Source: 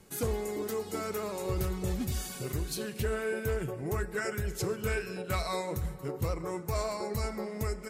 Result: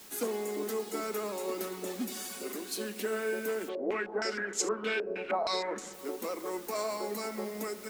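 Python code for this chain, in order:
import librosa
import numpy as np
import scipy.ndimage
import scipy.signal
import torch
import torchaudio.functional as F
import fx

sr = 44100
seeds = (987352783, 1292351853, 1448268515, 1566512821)

y = scipy.signal.sosfilt(scipy.signal.butter(16, 200.0, 'highpass', fs=sr, output='sos'), x)
y = fx.dmg_noise_colour(y, sr, seeds[0], colour='white', level_db=-52.0)
y = fx.filter_held_lowpass(y, sr, hz=6.4, low_hz=570.0, high_hz=7100.0, at=(3.68, 5.92), fade=0.02)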